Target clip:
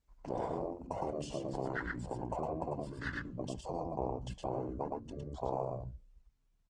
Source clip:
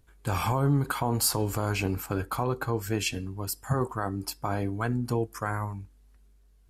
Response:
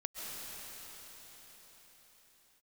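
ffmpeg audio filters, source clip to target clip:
-af "highpass=f=55:w=0.5412,highpass=f=55:w=1.3066,acompressor=threshold=0.0224:ratio=5,afwtdn=0.0112,aecho=1:1:106:0.668,flanger=delay=0.5:depth=9.5:regen=-88:speed=0.4:shape=sinusoidal,afftfilt=real='re*lt(hypot(re,im),0.0398)':imag='im*lt(hypot(re,im),0.0398)':win_size=1024:overlap=0.75,equalizer=f=340:w=1.8:g=-5.5,bandreject=f=130.1:t=h:w=4,bandreject=f=260.2:t=h:w=4,asetrate=27781,aresample=44100,atempo=1.5874,highshelf=f=4700:g=-7,volume=3.16" -ar 48000 -c:a libopus -b:a 20k

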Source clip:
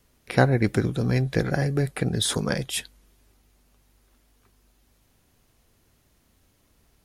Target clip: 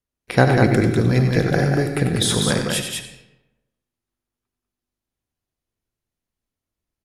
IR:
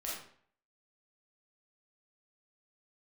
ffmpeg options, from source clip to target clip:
-filter_complex "[0:a]agate=range=0.0398:threshold=0.00251:ratio=16:detection=peak,aecho=1:1:93.29|195.3:0.398|0.631,asplit=2[s0][s1];[1:a]atrim=start_sample=2205,asetrate=23814,aresample=44100[s2];[s1][s2]afir=irnorm=-1:irlink=0,volume=0.237[s3];[s0][s3]amix=inputs=2:normalize=0,volume=1.33"

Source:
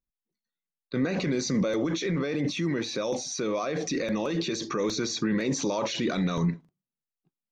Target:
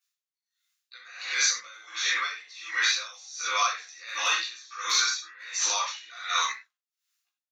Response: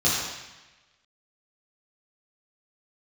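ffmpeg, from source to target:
-filter_complex "[0:a]highpass=f=1400:w=0.5412,highpass=f=1400:w=1.3066,acrossover=split=1800[s0][s1];[s1]acompressor=threshold=0.00631:ratio=6[s2];[s0][s2]amix=inputs=2:normalize=0[s3];[1:a]atrim=start_sample=2205,afade=t=out:st=0.17:d=0.01,atrim=end_sample=7938[s4];[s3][s4]afir=irnorm=-1:irlink=0,aeval=exprs='val(0)*pow(10,-25*(0.5-0.5*cos(2*PI*1.4*n/s))/20)':c=same,volume=2.11"

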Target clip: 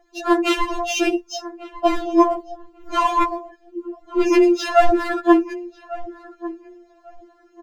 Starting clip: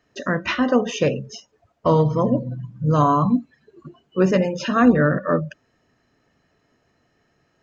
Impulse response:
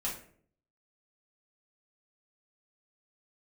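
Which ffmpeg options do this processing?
-filter_complex "[0:a]aphaser=in_gain=1:out_gain=1:delay=4.9:decay=0.57:speed=0.62:type=triangular,asplit=2[s0][s1];[s1]adynamicsmooth=sensitivity=8:basefreq=2900,volume=1.06[s2];[s0][s2]amix=inputs=2:normalize=0,apsyclip=0.944,asoftclip=type=hard:threshold=0.668,asplit=2[s3][s4];[s4]adelay=1147,lowpass=f=1600:p=1,volume=0.126,asplit=2[s5][s6];[s6]adelay=1147,lowpass=f=1600:p=1,volume=0.22[s7];[s3][s5][s7]amix=inputs=3:normalize=0,adynamicequalizer=threshold=0.0398:dfrequency=180:dqfactor=3.1:tfrequency=180:tqfactor=3.1:attack=5:release=100:ratio=0.375:range=2.5:mode=cutabove:tftype=bell,acontrast=24,equalizer=f=1800:t=o:w=1.1:g=-6.5,afftfilt=real='re*4*eq(mod(b,16),0)':imag='im*4*eq(mod(b,16),0)':win_size=2048:overlap=0.75"

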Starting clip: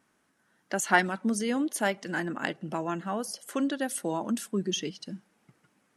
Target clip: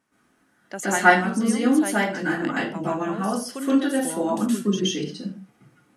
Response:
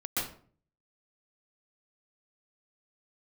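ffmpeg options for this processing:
-filter_complex "[1:a]atrim=start_sample=2205,afade=t=out:st=0.34:d=0.01,atrim=end_sample=15435[s0];[0:a][s0]afir=irnorm=-1:irlink=0"

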